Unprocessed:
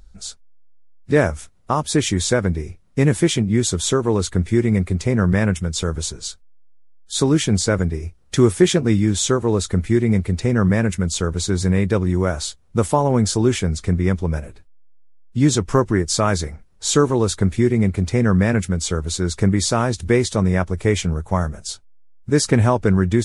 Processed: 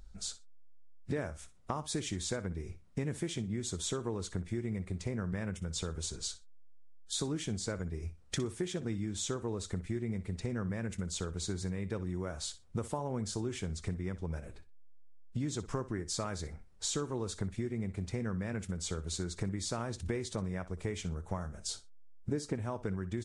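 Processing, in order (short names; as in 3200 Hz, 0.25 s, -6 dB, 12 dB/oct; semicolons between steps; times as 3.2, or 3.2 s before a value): 21.68–22.56 bell 340 Hz +7 dB 2.5 oct; compressor 6:1, threshold -27 dBFS, peak gain reduction 20 dB; on a send: feedback echo 61 ms, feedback 18%, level -15.5 dB; on the sum: downsampling 22050 Hz; gain -6.5 dB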